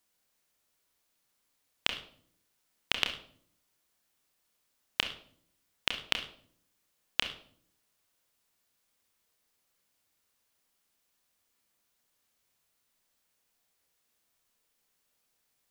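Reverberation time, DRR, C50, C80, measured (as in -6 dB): 0.55 s, 4.5 dB, 9.0 dB, 13.5 dB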